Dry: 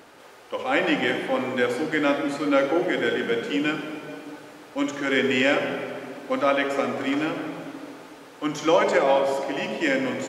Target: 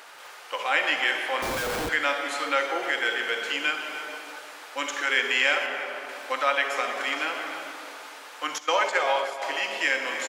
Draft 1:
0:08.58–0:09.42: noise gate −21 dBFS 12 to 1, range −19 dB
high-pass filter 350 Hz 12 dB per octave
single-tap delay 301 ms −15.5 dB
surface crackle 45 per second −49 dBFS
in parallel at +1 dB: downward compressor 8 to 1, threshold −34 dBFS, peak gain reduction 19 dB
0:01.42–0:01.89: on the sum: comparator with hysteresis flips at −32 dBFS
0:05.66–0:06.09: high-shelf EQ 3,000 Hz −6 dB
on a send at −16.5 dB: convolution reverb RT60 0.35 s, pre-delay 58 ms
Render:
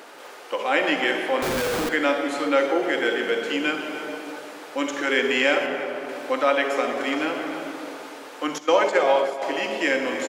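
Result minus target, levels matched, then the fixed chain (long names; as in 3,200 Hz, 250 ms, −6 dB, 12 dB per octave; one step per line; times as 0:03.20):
250 Hz band +11.0 dB
0:08.58–0:09.42: noise gate −21 dBFS 12 to 1, range −19 dB
high-pass filter 940 Hz 12 dB per octave
single-tap delay 301 ms −15.5 dB
surface crackle 45 per second −49 dBFS
in parallel at +1 dB: downward compressor 8 to 1, threshold −34 dBFS, peak gain reduction 14.5 dB
0:01.42–0:01.89: on the sum: comparator with hysteresis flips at −32 dBFS
0:05.66–0:06.09: high-shelf EQ 3,000 Hz −6 dB
on a send at −16.5 dB: convolution reverb RT60 0.35 s, pre-delay 58 ms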